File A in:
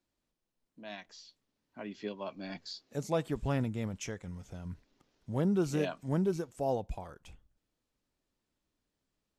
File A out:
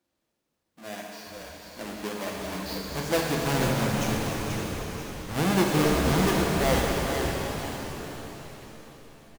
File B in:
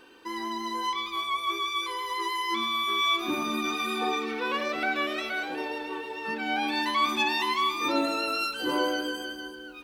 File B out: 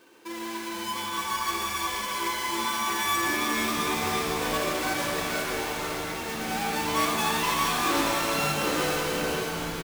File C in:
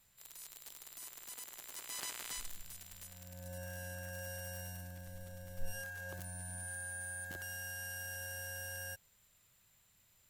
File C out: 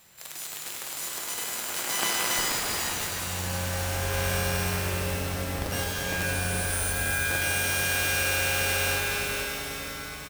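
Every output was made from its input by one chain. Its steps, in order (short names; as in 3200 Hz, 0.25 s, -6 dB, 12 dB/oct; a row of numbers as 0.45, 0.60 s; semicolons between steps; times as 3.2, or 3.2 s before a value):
half-waves squared off; HPF 200 Hz 6 dB/oct; on a send: frequency-shifting echo 0.486 s, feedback 43%, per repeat -130 Hz, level -6 dB; on the sum: shimmer reverb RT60 3.7 s, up +7 st, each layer -8 dB, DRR -1.5 dB; match loudness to -27 LUFS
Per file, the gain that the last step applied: +1.0, -8.0, +9.5 dB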